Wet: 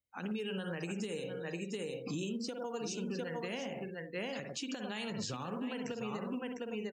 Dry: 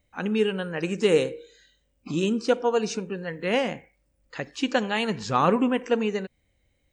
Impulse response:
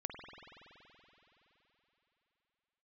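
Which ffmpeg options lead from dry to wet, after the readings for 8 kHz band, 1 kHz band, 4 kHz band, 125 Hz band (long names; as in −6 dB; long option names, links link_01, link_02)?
−5.5 dB, −16.5 dB, −10.0 dB, −9.5 dB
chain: -filter_complex "[0:a]highpass=49[link_01];[1:a]atrim=start_sample=2205,atrim=end_sample=4410[link_02];[link_01][link_02]afir=irnorm=-1:irlink=0,asplit=2[link_03][link_04];[link_04]acrusher=bits=4:mode=log:mix=0:aa=0.000001,volume=-8.5dB[link_05];[link_03][link_05]amix=inputs=2:normalize=0,highshelf=frequency=5100:gain=11,asplit=2[link_06][link_07];[link_07]aecho=0:1:703:0.376[link_08];[link_06][link_08]amix=inputs=2:normalize=0,acompressor=threshold=-28dB:ratio=6,afftdn=noise_reduction=23:noise_floor=-47,acrossover=split=250|3000[link_09][link_10][link_11];[link_10]acompressor=threshold=-34dB:ratio=6[link_12];[link_09][link_12][link_11]amix=inputs=3:normalize=0,alimiter=level_in=3.5dB:limit=-24dB:level=0:latency=1:release=130,volume=-3.5dB,volume=-2dB"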